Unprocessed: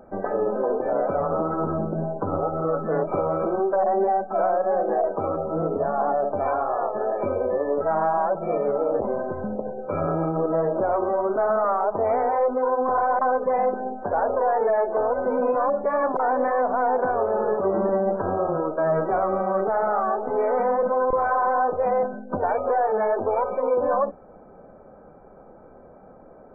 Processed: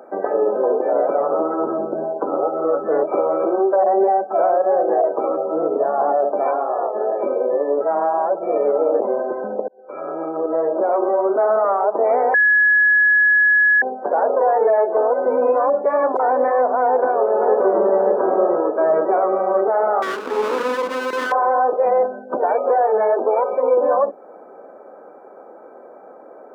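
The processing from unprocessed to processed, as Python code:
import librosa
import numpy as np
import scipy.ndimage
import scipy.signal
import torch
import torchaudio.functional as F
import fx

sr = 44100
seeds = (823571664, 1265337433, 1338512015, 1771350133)

y = fx.air_absorb(x, sr, metres=430.0, at=(6.51, 8.56))
y = fx.echo_throw(y, sr, start_s=16.83, length_s=1.14, ms=580, feedback_pct=50, wet_db=-5.5)
y = fx.lower_of_two(y, sr, delay_ms=0.67, at=(20.02, 21.32))
y = fx.edit(y, sr, fx.fade_in_span(start_s=9.68, length_s=1.7, curve='qsin'),
    fx.bleep(start_s=12.34, length_s=1.48, hz=1690.0, db=-12.5), tone=tone)
y = scipy.signal.sosfilt(scipy.signal.butter(4, 310.0, 'highpass', fs=sr, output='sos'), y)
y = fx.dynamic_eq(y, sr, hz=1500.0, q=0.76, threshold_db=-37.0, ratio=4.0, max_db=-6)
y = F.gain(torch.from_numpy(y), 7.5).numpy()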